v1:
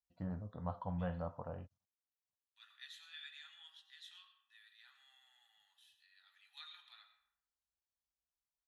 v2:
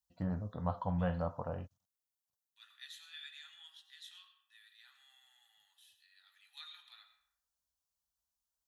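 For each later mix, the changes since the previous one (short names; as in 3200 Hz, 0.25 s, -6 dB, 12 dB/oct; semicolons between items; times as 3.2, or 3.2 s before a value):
first voice +5.5 dB; master: add high shelf 5900 Hz +10 dB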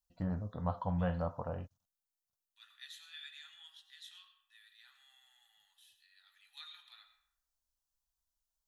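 master: remove HPF 63 Hz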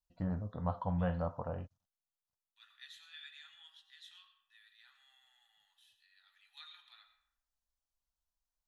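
master: add high shelf 5900 Hz -10 dB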